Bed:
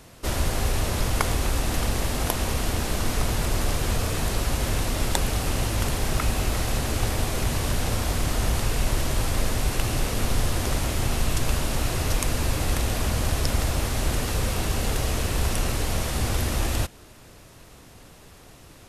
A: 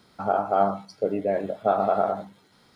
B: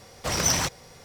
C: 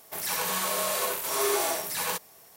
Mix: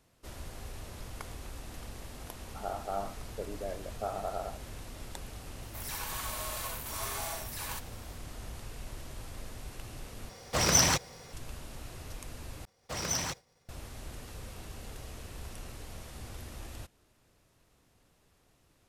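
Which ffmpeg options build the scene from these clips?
-filter_complex "[2:a]asplit=2[a][b];[0:a]volume=-19.5dB[c];[1:a]bass=f=250:g=-6,treble=f=4k:g=-4[d];[3:a]highpass=f=620:w=0.5412,highpass=f=620:w=1.3066[e];[b]agate=range=-33dB:threshold=-42dB:ratio=3:release=100:detection=peak[f];[c]asplit=3[g][h][i];[g]atrim=end=10.294[j];[a]atrim=end=1.04,asetpts=PTS-STARTPTS,volume=-0.5dB[k];[h]atrim=start=11.326:end=12.654[l];[f]atrim=end=1.04,asetpts=PTS-STARTPTS,volume=-9.5dB[m];[i]atrim=start=13.686[n];[d]atrim=end=2.75,asetpts=PTS-STARTPTS,volume=-14dB,afade=t=in:d=0.004:c=hsin,afade=t=out:st=2.746:d=0.004:c=hsin,adelay=2360[o];[e]atrim=end=2.56,asetpts=PTS-STARTPTS,volume=-9.5dB,afade=t=in:d=0.004:c=hsin,afade=t=out:st=2.556:d=0.004:c=hsin,adelay=5620[p];[j][k]acrossfade=d=0.004:c1=hsin:c2=hsin[q];[q][l]acrossfade=d=0.004:c1=hsin:c2=hsin[r];[r][m]acrossfade=d=0.004:c1=hsin:c2=hsin[s];[s][n]acrossfade=d=0.004:c1=hsin:c2=hsin[t];[t][o][p]amix=inputs=3:normalize=0"

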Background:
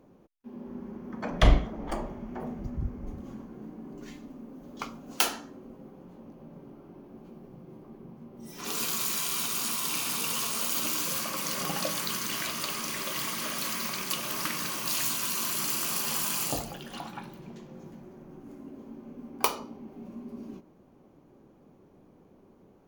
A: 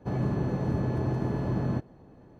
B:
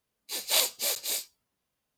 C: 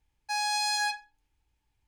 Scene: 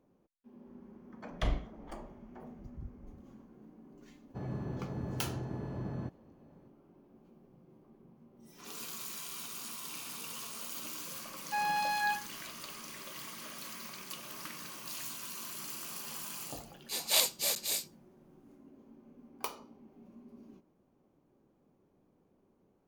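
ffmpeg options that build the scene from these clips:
-filter_complex "[0:a]volume=-12.5dB[a];[3:a]lowpass=2.1k[b];[1:a]atrim=end=2.39,asetpts=PTS-STARTPTS,volume=-10.5dB,afade=t=in:d=0.004:c=hsin,afade=t=out:st=2.386:d=0.004:c=hsin,adelay=189189S[c];[b]atrim=end=1.87,asetpts=PTS-STARTPTS,volume=-0.5dB,afade=t=in:d=0.004:c=hsin,afade=t=out:st=1.866:d=0.004:c=hsin,adelay=11230[d];[2:a]atrim=end=1.97,asetpts=PTS-STARTPTS,volume=-2.5dB,afade=t=in:d=0.004:c=hsin,afade=t=out:st=1.966:d=0.004:c=hsin,adelay=16600[e];[a][c][d][e]amix=inputs=4:normalize=0"

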